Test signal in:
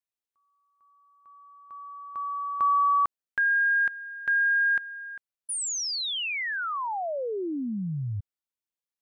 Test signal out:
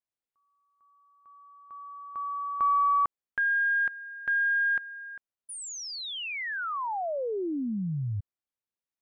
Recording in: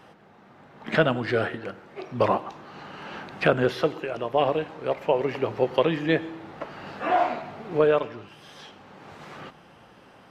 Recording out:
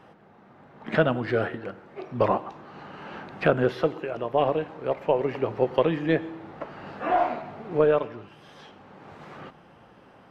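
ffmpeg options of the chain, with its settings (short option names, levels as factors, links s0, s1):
-af "aeval=exprs='0.501*(cos(1*acos(clip(val(0)/0.501,-1,1)))-cos(1*PI/2))+0.0282*(cos(2*acos(clip(val(0)/0.501,-1,1)))-cos(2*PI/2))':c=same,highshelf=f=2700:g=-9.5"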